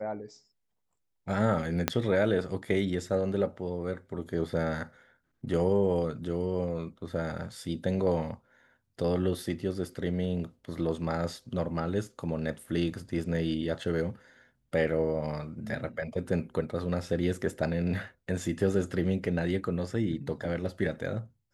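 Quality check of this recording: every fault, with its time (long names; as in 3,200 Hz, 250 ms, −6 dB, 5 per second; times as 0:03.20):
0:01.88: click −8 dBFS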